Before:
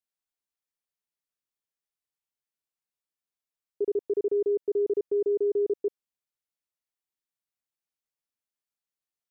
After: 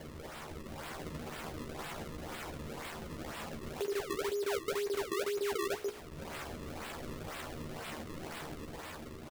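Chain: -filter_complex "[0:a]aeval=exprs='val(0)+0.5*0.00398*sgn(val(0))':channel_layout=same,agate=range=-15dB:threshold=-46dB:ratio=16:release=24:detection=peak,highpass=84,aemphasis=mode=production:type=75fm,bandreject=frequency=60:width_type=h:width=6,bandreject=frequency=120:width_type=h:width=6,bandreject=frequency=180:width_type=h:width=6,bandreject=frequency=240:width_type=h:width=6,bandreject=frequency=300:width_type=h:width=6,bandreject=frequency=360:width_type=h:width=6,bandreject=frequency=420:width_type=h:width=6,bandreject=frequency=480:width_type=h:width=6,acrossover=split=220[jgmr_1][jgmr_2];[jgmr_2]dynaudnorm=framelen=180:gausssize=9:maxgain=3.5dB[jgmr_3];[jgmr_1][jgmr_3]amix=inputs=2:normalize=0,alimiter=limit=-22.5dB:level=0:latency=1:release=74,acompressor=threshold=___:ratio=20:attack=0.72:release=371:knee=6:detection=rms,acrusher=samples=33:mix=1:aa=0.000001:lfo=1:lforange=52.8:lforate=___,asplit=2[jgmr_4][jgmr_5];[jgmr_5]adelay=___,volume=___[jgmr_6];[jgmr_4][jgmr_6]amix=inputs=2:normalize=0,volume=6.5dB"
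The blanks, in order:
-37dB, 2, 13, -5dB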